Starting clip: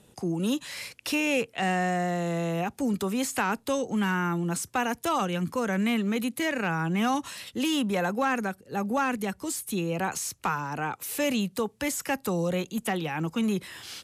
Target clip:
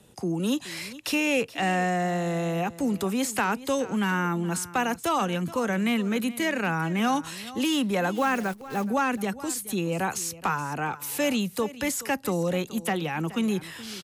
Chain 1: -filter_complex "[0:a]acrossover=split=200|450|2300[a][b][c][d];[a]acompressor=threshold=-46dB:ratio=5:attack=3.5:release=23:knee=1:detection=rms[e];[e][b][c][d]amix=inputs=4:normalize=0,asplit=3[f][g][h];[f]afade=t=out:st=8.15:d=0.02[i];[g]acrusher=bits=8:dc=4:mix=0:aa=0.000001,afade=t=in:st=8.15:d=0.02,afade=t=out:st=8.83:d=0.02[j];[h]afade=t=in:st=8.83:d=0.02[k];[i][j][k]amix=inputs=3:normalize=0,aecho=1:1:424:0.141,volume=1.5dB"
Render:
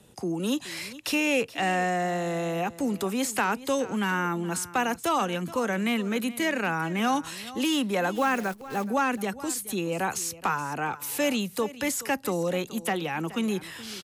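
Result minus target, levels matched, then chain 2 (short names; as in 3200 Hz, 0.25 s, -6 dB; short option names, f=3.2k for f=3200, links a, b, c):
compressor: peak gain reduction +9 dB
-filter_complex "[0:a]acrossover=split=200|450|2300[a][b][c][d];[a]acompressor=threshold=-34.5dB:ratio=5:attack=3.5:release=23:knee=1:detection=rms[e];[e][b][c][d]amix=inputs=4:normalize=0,asplit=3[f][g][h];[f]afade=t=out:st=8.15:d=0.02[i];[g]acrusher=bits=8:dc=4:mix=0:aa=0.000001,afade=t=in:st=8.15:d=0.02,afade=t=out:st=8.83:d=0.02[j];[h]afade=t=in:st=8.83:d=0.02[k];[i][j][k]amix=inputs=3:normalize=0,aecho=1:1:424:0.141,volume=1.5dB"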